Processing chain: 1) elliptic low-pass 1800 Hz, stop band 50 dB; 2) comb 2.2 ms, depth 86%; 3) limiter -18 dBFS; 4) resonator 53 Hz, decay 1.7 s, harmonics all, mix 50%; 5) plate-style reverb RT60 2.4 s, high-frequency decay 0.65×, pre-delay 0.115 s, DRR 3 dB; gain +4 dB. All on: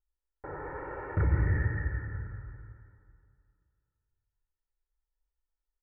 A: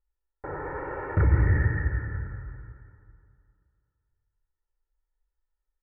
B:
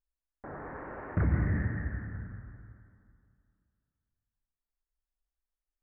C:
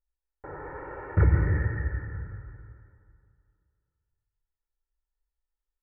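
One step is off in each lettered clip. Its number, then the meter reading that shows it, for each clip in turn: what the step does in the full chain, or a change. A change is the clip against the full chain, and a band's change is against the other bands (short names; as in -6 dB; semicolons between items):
4, loudness change +5.0 LU; 2, 250 Hz band +6.5 dB; 3, crest factor change +2.0 dB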